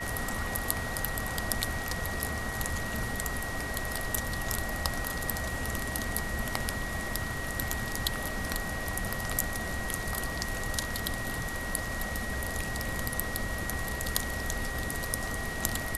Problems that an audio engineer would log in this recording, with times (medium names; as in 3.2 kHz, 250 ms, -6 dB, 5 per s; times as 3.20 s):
whine 1.9 kHz -37 dBFS